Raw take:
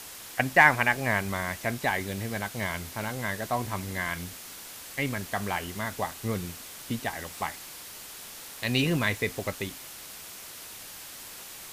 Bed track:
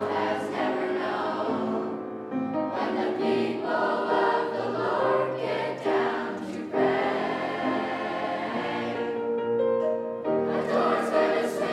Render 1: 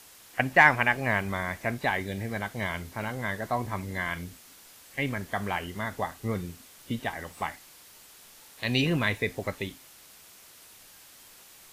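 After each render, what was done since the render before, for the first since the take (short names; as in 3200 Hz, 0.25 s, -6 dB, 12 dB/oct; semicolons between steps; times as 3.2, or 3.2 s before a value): noise print and reduce 9 dB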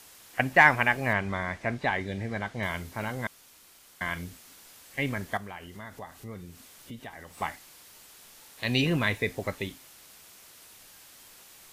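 1.13–2.63 air absorption 70 m; 3.27–4.01 room tone; 5.37–7.38 compressor 2:1, threshold -46 dBFS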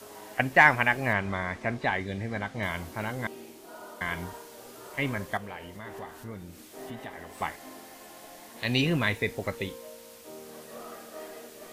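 add bed track -20 dB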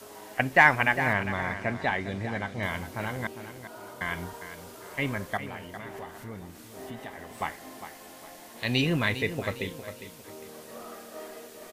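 feedback echo 0.404 s, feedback 33%, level -11.5 dB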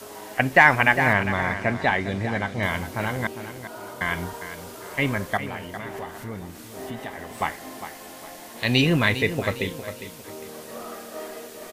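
gain +6 dB; limiter -3 dBFS, peak gain reduction 3 dB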